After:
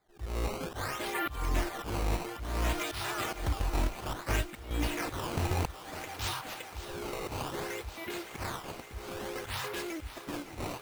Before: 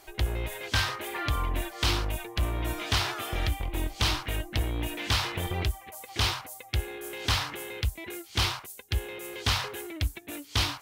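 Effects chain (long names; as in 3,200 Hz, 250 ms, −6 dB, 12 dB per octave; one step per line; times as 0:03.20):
spectral magnitudes quantised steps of 15 dB
noise gate with hold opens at −38 dBFS
volume swells 263 ms
sample-and-hold swept by an LFO 15×, swing 160% 0.59 Hz
feedback echo with a high-pass in the loop 560 ms, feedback 83%, high-pass 310 Hz, level −13 dB
0:04.13–0:04.71: multiband upward and downward expander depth 100%
level +1.5 dB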